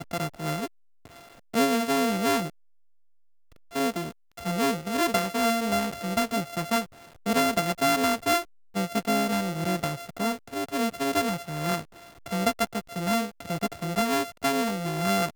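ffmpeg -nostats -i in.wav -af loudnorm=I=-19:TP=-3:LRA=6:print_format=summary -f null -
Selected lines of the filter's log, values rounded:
Input Integrated:    -27.2 LUFS
Input True Peak:      -9.4 dBTP
Input LRA:             2.7 LU
Input Threshold:     -37.5 LUFS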